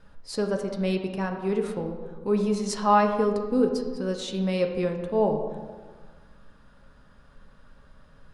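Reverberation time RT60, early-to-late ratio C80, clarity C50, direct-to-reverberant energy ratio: 1.6 s, 7.5 dB, 6.0 dB, 3.0 dB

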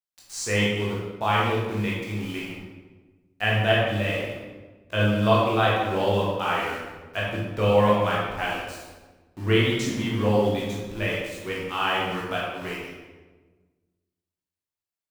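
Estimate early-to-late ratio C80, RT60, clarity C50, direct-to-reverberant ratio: 2.0 dB, 1.3 s, -0.5 dB, -6.0 dB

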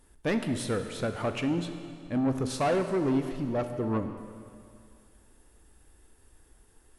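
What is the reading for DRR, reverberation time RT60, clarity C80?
7.0 dB, 2.3 s, 9.0 dB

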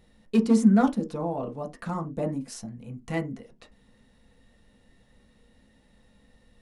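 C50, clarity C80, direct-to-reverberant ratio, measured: 17.5 dB, 26.5 dB, 1.0 dB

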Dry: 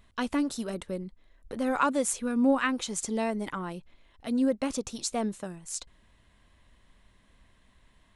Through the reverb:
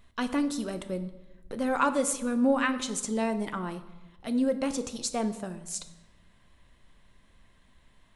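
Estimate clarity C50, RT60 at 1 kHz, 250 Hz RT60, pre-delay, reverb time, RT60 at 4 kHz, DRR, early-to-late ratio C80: 13.0 dB, 1.1 s, 1.5 s, 5 ms, 1.1 s, 0.80 s, 9.0 dB, 15.0 dB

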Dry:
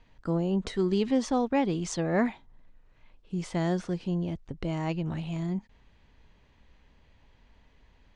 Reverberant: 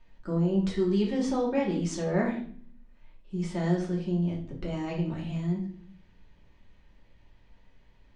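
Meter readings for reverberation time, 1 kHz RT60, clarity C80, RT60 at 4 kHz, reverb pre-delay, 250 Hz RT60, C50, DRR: 0.50 s, 0.40 s, 11.0 dB, 0.45 s, 3 ms, 0.80 s, 7.0 dB, -4.0 dB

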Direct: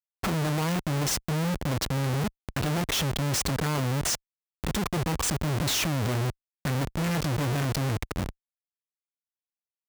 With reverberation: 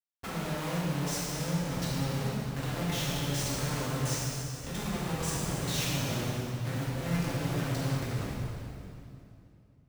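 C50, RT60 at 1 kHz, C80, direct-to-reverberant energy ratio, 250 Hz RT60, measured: -3.5 dB, 2.5 s, -1.5 dB, -8.5 dB, 3.3 s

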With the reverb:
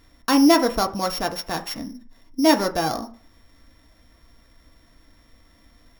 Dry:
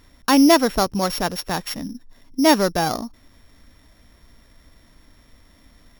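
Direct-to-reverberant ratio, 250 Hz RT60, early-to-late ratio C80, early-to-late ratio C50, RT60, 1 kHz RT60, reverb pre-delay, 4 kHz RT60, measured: 4.5 dB, 0.35 s, 20.0 dB, 15.0 dB, 0.45 s, 0.50 s, 3 ms, 0.45 s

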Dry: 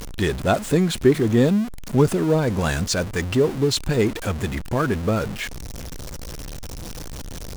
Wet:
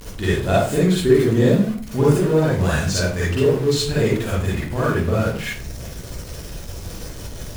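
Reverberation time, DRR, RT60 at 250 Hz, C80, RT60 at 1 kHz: 0.45 s, -7.5 dB, 0.50 s, 6.0 dB, 0.40 s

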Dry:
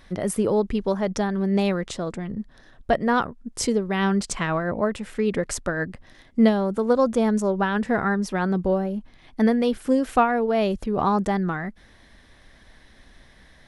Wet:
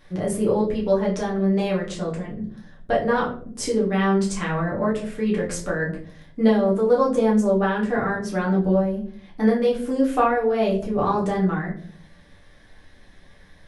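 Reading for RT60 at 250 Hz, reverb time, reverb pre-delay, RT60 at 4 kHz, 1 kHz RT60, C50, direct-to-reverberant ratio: 0.75 s, 0.55 s, 7 ms, 0.30 s, 0.45 s, 8.5 dB, -4.5 dB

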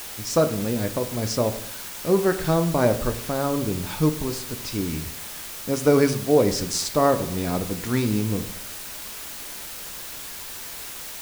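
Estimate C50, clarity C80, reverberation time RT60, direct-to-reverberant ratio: 13.0 dB, 15.5 dB, 0.65 s, 7.5 dB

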